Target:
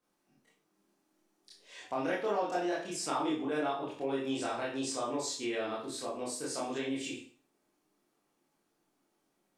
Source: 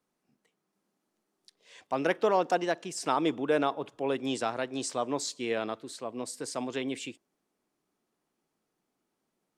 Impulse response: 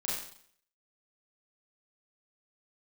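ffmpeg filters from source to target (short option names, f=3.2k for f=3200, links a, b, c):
-filter_complex "[1:a]atrim=start_sample=2205,asetrate=66150,aresample=44100[a];[0:a][a]afir=irnorm=-1:irlink=0,acompressor=threshold=-40dB:ratio=2,volume=3dB"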